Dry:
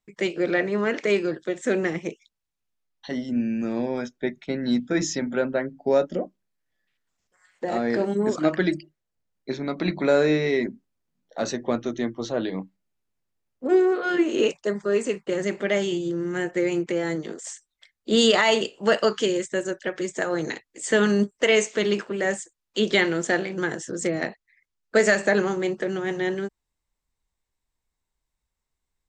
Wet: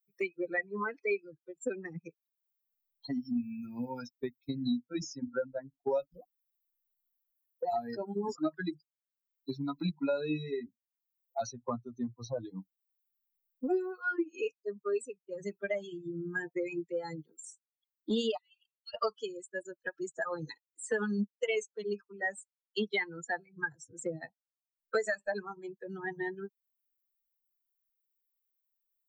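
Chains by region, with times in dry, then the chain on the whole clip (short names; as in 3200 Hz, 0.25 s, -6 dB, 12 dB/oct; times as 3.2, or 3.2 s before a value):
18.37–18.94 resonant high-pass 2700 Hz, resonance Q 1.8 + compressor 8:1, threshold -33 dBFS
whole clip: per-bin expansion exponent 3; three-band squash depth 100%; gain -1.5 dB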